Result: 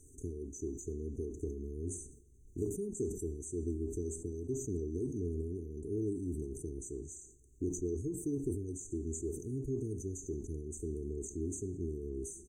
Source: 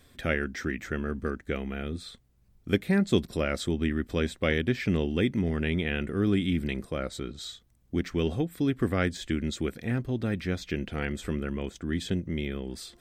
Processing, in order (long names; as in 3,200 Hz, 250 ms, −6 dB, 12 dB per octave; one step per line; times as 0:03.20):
first-order pre-emphasis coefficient 0.9
comb filter 2.6 ms, depth 61%
downward compressor 2.5 to 1, threshold −53 dBFS, peak gain reduction 13 dB
high-frequency loss of the air 120 metres
on a send at −11 dB: convolution reverb, pre-delay 3 ms
on the sum: wrong playback speed 24 fps film run at 25 fps
linear-phase brick-wall band-stop 450–6,000 Hz
level that may fall only so fast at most 73 dB per second
level +17.5 dB